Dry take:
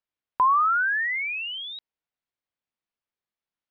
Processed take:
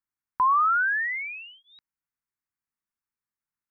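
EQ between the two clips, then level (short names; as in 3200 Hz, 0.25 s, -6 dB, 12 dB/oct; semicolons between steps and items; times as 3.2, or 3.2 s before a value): fixed phaser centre 1400 Hz, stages 4; 0.0 dB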